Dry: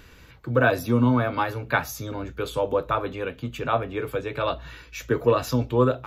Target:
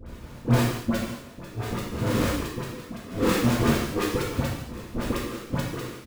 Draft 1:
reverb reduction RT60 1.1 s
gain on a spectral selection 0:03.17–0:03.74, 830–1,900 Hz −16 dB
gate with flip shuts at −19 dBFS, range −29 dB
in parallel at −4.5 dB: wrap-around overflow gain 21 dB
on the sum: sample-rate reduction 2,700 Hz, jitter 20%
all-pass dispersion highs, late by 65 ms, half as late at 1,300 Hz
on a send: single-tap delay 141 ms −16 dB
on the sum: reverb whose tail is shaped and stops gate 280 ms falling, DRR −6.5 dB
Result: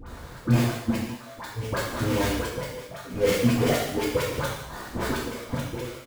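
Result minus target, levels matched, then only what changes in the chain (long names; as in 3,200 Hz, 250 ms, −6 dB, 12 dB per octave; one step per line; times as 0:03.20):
sample-rate reduction: distortion −10 dB
change: sample-rate reduction 810 Hz, jitter 20%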